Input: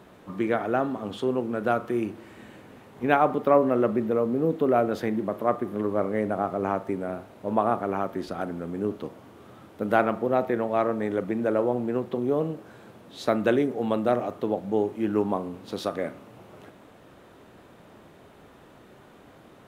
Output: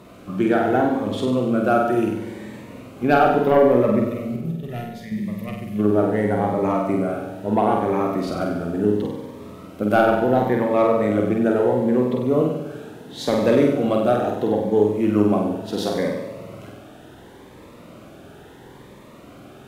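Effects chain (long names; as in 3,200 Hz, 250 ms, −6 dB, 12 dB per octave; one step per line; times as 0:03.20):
0:04.36–0:05.12: noise gate −21 dBFS, range −11 dB
in parallel at −9 dB: sine wavefolder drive 6 dB, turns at −6 dBFS
0:04.04–0:05.79: on the sum: gain on a spectral selection 230–1,700 Hz −17 dB
flutter between parallel walls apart 8.2 metres, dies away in 0.84 s
on a send at −17 dB: convolution reverb RT60 1.9 s, pre-delay 116 ms
on the sum: phaser whose notches keep moving one way rising 0.73 Hz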